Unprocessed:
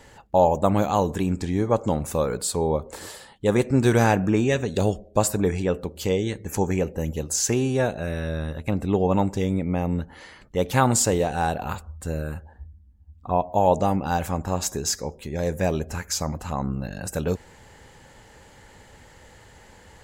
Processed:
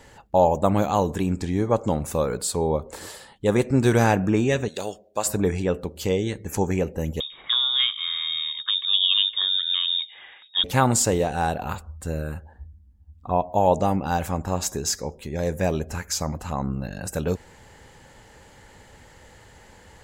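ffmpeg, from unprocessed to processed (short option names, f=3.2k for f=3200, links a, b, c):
-filter_complex "[0:a]asettb=1/sr,asplit=3[a][b][c];[a]atrim=end=4.684[d];[b]atrim=start=4.68:end=5.26,asetpts=PTS-STARTPTS,afade=t=in:d=0.004:c=qsin,afade=t=out:st=0.576:d=0.004:c=qsin,highpass=f=1k:p=1[e];[c]atrim=start=5.256[f];[d][e]acrossfade=d=0.004:c1=hsin:c2=qsin[g];[g][f]acrossfade=d=0.004:c1=qsin:c2=hsin,asettb=1/sr,asplit=3[h][i][j];[h]atrim=end=7.204[k];[i]atrim=start=7.2:end=10.64,asetpts=PTS-STARTPTS,afade=t=in:d=0.004:c=qsin,afade=t=out:st=3.436:d=0.004:c=qsin,lowpass=f=3.2k:t=q:w=0.5098,lowpass=f=3.2k:t=q:w=0.6013,lowpass=f=3.2k:t=q:w=0.9,lowpass=f=3.2k:t=q:w=2.563,afreqshift=-3800[l];[j]atrim=start=10.636[m];[k][l]acrossfade=d=0.004:c1=hsin:c2=qsin[n];[n][m]acrossfade=d=0.004:c1=qsin:c2=hsin"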